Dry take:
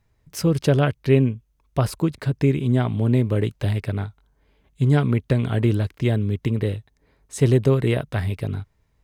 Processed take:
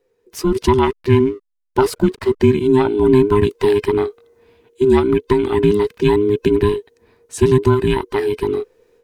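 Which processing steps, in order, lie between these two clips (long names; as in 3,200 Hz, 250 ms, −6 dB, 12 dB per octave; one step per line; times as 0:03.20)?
frequency inversion band by band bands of 500 Hz
automatic gain control gain up to 13.5 dB
0:00.84–0:02.53: slack as between gear wheels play −37 dBFS
level −1 dB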